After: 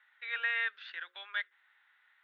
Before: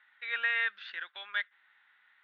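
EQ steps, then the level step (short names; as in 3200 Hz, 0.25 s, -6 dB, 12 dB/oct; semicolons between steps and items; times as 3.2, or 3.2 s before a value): HPF 320 Hz 24 dB/oct; notches 60/120/180/240/300/360/420/480/540 Hz; -2.5 dB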